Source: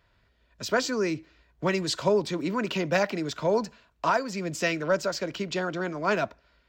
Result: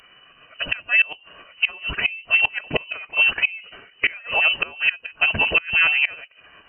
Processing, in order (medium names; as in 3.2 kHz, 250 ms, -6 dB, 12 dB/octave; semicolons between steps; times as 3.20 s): dynamic bell 1.3 kHz, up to -4 dB, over -42 dBFS, Q 1.7; frequency inversion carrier 3.1 kHz; formant-preserving pitch shift -1.5 st; inverted gate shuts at -20 dBFS, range -26 dB; loudness maximiser +21.5 dB; trim -6.5 dB